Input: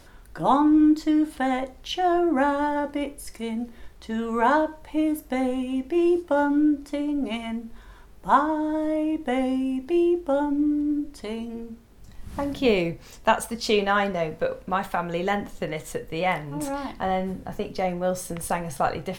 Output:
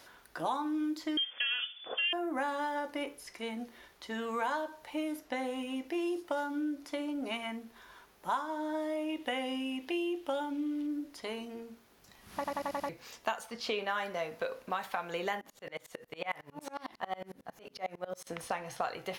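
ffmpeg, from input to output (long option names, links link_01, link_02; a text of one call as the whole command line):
ffmpeg -i in.wav -filter_complex "[0:a]asettb=1/sr,asplit=3[link_01][link_02][link_03];[link_01]atrim=end=1.174[link_04];[link_02]atrim=start=1.17:end=2.13,asetpts=PTS-STARTPTS,afade=type=in:duration=0.004:curve=qsin,afade=type=out:start_time=0.956:duration=0.004:curve=qsin,lowpass=frequency=3000:width_type=q:width=0.5098,lowpass=frequency=3000:width_type=q:width=0.6013,lowpass=frequency=3000:width_type=q:width=0.9,lowpass=frequency=3000:width_type=q:width=2.563,afreqshift=-3500[link_05];[link_03]atrim=start=2.126[link_06];[link_04][link_05]acrossfade=duration=0.004:curve1=hsin:curve2=qsin[link_07];[link_07][link_06]acrossfade=duration=0.004:curve1=qsin:curve2=hsin,asettb=1/sr,asplit=3[link_08][link_09][link_10];[link_08]atrim=end=9.094[link_11];[link_09]atrim=start=9.09:end=10.87,asetpts=PTS-STARTPTS,afade=type=in:duration=0.004:curve=qsin,afade=type=out:start_time=1.776:duration=0.004:curve=qsin,equalizer=frequency=3000:width_type=o:width=0.76:gain=8.5[link_12];[link_10]atrim=start=10.866[link_13];[link_11][link_12]acrossfade=duration=0.004:curve1=hsin:curve2=qsin[link_14];[link_14][link_13]acrossfade=duration=0.004:curve1=qsin:curve2=hsin,asettb=1/sr,asplit=3[link_15][link_16][link_17];[link_15]atrim=end=15.414[link_18];[link_16]atrim=start=15.41:end=18.27,asetpts=PTS-STARTPTS,afade=type=in:duration=0.004:curve=qsin,afade=type=out:start_time=2.856:duration=0.004:curve=qsin,aeval=exprs='val(0)*pow(10,-28*if(lt(mod(-11*n/s,1),2*abs(-11)/1000),1-mod(-11*n/s,1)/(2*abs(-11)/1000),(mod(-11*n/s,1)-2*abs(-11)/1000)/(1-2*abs(-11)/1000))/20)':channel_layout=same[link_19];[link_17]atrim=start=18.266[link_20];[link_18][link_19]acrossfade=duration=0.004:curve1=hsin:curve2=qsin[link_21];[link_21][link_20]acrossfade=duration=0.004:curve1=qsin:curve2=hsin,asplit=7[link_22][link_23][link_24][link_25][link_26][link_27][link_28];[link_22]atrim=end=12.442[link_29];[link_23]atrim=start=12.348:end=12.442[link_30];[link_24]atrim=start=12.348:end=12.442[link_31];[link_25]atrim=start=12.348:end=12.442[link_32];[link_26]atrim=start=12.348:end=12.442[link_33];[link_27]atrim=start=12.348:end=12.442[link_34];[link_28]atrim=start=12.888[link_35];[link_29][link_30]acrossfade=duration=0.004:curve1=hsin:curve2=hsin[link_36];[link_36][link_31]acrossfade=duration=0.004:curve1=hsin:curve2=hsin[link_37];[link_37][link_32]acrossfade=duration=0.004:curve1=hsin:curve2=hsin[link_38];[link_38][link_33]acrossfade=duration=0.004:curve1=hsin:curve2=hsin[link_39];[link_39][link_34]acrossfade=duration=0.004:curve1=hsin:curve2=hsin[link_40];[link_40][link_35]acrossfade=duration=0.004:curve1=hsin:curve2=hsin,highpass=frequency=810:poles=1,equalizer=frequency=8100:width_type=o:width=0.34:gain=-6,acrossover=split=3200|6600[link_41][link_42][link_43];[link_41]acompressor=threshold=-32dB:ratio=4[link_44];[link_42]acompressor=threshold=-51dB:ratio=4[link_45];[link_43]acompressor=threshold=-57dB:ratio=4[link_46];[link_44][link_45][link_46]amix=inputs=3:normalize=0" out.wav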